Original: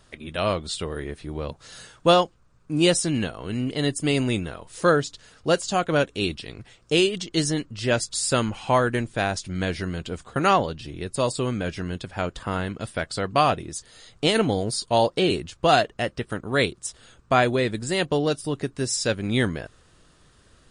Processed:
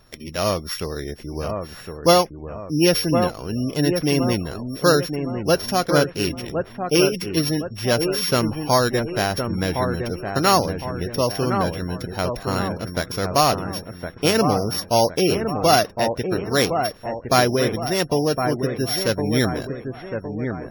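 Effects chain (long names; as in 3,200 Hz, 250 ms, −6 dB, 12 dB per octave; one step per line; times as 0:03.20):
samples sorted by size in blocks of 8 samples
delay with a low-pass on its return 1,062 ms, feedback 44%, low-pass 1,900 Hz, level −6 dB
gate on every frequency bin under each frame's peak −30 dB strong
level +2.5 dB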